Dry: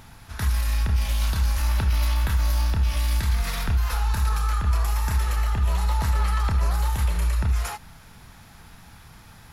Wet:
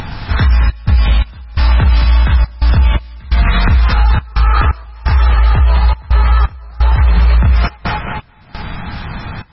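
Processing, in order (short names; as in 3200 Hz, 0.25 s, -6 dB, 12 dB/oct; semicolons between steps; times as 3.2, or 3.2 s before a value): tape echo 0.213 s, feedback 58%, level -6 dB, low-pass 4900 Hz; compressor 12:1, threshold -27 dBFS, peak gain reduction 11.5 dB; 4.34–7.09 bell 210 Hz -7 dB 0.69 oct; modulation noise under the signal 30 dB; step gate "xxxx.xx..x" 86 bpm -24 dB; low shelf 280 Hz +3 dB; upward compressor, threshold -43 dBFS; 4.55–4.83 spectral gain 220–7400 Hz +7 dB; maximiser +22 dB; gain -1.5 dB; MP3 16 kbps 22050 Hz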